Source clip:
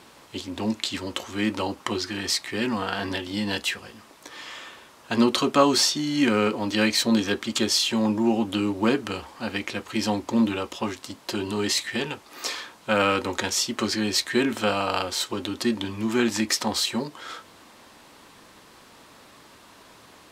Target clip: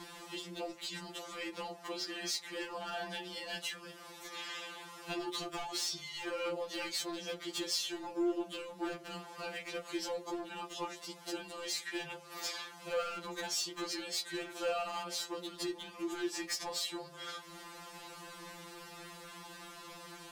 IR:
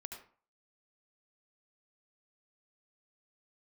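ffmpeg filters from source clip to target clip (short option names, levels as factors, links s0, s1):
-af "bandreject=f=52.55:t=h:w=4,bandreject=f=105.1:t=h:w=4,bandreject=f=157.65:t=h:w=4,bandreject=f=210.2:t=h:w=4,bandreject=f=262.75:t=h:w=4,bandreject=f=315.3:t=h:w=4,bandreject=f=367.85:t=h:w=4,bandreject=f=420.4:t=h:w=4,bandreject=f=472.95:t=h:w=4,bandreject=f=525.5:t=h:w=4,bandreject=f=578.05:t=h:w=4,bandreject=f=630.6:t=h:w=4,bandreject=f=683.15:t=h:w=4,bandreject=f=735.7:t=h:w=4,bandreject=f=788.25:t=h:w=4,bandreject=f=840.8:t=h:w=4,bandreject=f=893.35:t=h:w=4,acompressor=threshold=0.00562:ratio=2,asoftclip=type=hard:threshold=0.0266,afftfilt=real='re*2.83*eq(mod(b,8),0)':imag='im*2.83*eq(mod(b,8),0)':win_size=2048:overlap=0.75,volume=1.5"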